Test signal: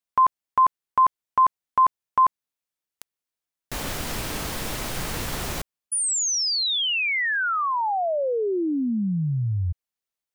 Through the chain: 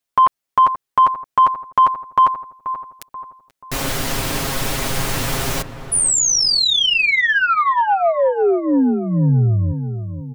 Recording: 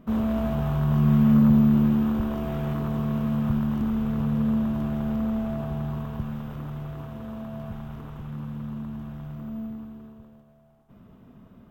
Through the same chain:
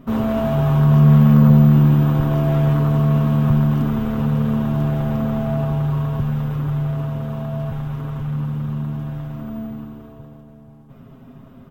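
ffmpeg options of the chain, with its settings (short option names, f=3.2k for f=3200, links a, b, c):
-filter_complex "[0:a]aecho=1:1:7.4:0.63,asplit=2[a][b];[b]adelay=483,lowpass=f=1.4k:p=1,volume=-10.5dB,asplit=2[c][d];[d]adelay=483,lowpass=f=1.4k:p=1,volume=0.48,asplit=2[e][f];[f]adelay=483,lowpass=f=1.4k:p=1,volume=0.48,asplit=2[g][h];[h]adelay=483,lowpass=f=1.4k:p=1,volume=0.48,asplit=2[i][j];[j]adelay=483,lowpass=f=1.4k:p=1,volume=0.48[k];[c][e][g][i][k]amix=inputs=5:normalize=0[l];[a][l]amix=inputs=2:normalize=0,acontrast=65"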